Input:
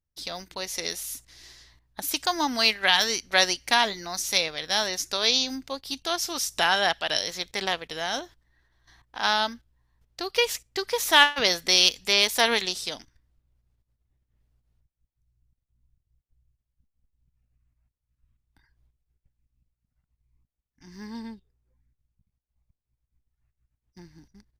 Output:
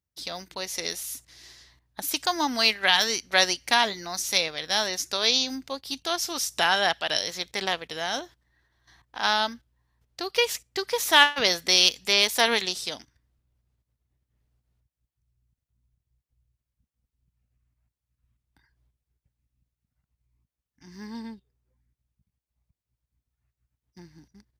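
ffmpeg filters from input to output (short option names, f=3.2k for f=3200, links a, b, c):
-af "highpass=59"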